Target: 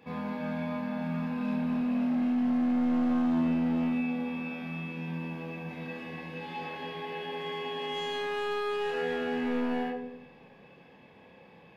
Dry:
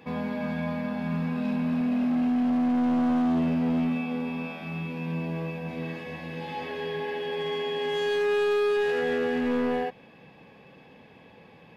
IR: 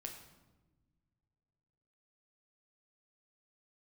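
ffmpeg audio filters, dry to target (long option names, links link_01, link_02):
-filter_complex "[0:a]asplit=2[link_01][link_02];[link_02]equalizer=frequency=1100:width=0.33:gain=7.5[link_03];[1:a]atrim=start_sample=2205,asetrate=61740,aresample=44100,adelay=30[link_04];[link_03][link_04]afir=irnorm=-1:irlink=0,volume=1.5dB[link_05];[link_01][link_05]amix=inputs=2:normalize=0,volume=-6.5dB"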